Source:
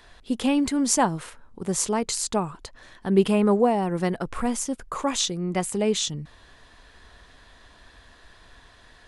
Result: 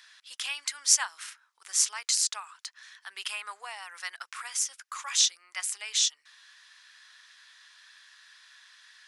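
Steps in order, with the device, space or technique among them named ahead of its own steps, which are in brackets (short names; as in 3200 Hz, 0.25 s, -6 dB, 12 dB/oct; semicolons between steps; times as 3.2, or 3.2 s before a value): headphones lying on a table (HPF 1400 Hz 24 dB/oct; bell 5500 Hz +6 dB 0.5 oct)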